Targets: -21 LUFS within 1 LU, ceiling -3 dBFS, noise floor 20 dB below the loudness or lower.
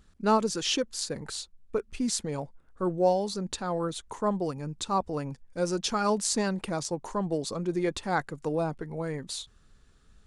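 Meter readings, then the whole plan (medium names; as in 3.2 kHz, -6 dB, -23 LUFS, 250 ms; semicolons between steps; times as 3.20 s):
loudness -30.0 LUFS; peak level -10.5 dBFS; loudness target -21.0 LUFS
-> trim +9 dB; peak limiter -3 dBFS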